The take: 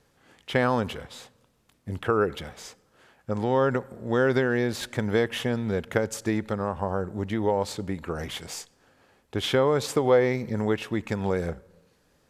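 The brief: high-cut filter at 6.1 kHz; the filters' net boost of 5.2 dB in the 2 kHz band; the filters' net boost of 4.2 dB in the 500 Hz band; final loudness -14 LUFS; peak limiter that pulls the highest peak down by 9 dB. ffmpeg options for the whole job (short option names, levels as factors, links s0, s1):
-af "lowpass=6100,equalizer=f=500:t=o:g=4.5,equalizer=f=2000:t=o:g=6.5,volume=3.76,alimiter=limit=0.891:level=0:latency=1"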